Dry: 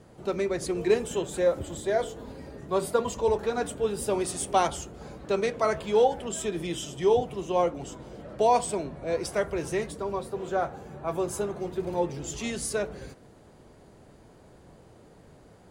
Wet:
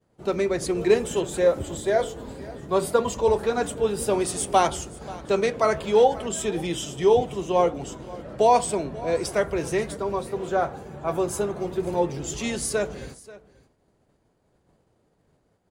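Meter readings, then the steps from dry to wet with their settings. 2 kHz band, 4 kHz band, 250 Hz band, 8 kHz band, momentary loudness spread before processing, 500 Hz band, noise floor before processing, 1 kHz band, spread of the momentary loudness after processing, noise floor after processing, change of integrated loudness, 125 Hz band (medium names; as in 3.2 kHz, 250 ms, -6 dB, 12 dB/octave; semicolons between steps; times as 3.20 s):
+4.0 dB, +4.0 dB, +4.0 dB, +4.0 dB, 12 LU, +4.0 dB, -54 dBFS, +4.0 dB, 12 LU, -68 dBFS, +4.0 dB, +4.0 dB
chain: expander -41 dBFS; delay 535 ms -19.5 dB; trim +4 dB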